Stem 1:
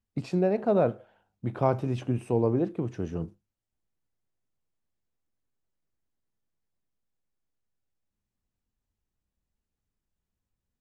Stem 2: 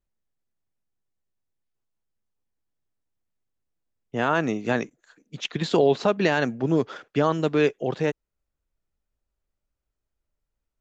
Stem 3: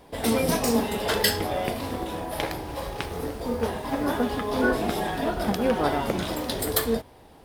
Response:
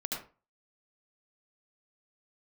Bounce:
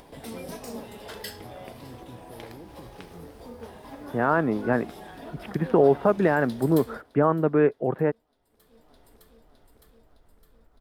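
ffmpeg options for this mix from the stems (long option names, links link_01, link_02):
-filter_complex "[0:a]alimiter=limit=-21dB:level=0:latency=1,volume=-16.5dB[link_01];[1:a]lowpass=frequency=1700:width=0.5412,lowpass=frequency=1700:width=1.3066,volume=1dB[link_02];[2:a]volume=-15.5dB,asplit=2[link_03][link_04];[link_04]volume=-22dB,aecho=0:1:611|1222|1833|2444|3055|3666|4277|4888:1|0.56|0.314|0.176|0.0983|0.0551|0.0308|0.0173[link_05];[link_01][link_02][link_03][link_05]amix=inputs=4:normalize=0,acompressor=mode=upward:threshold=-38dB:ratio=2.5"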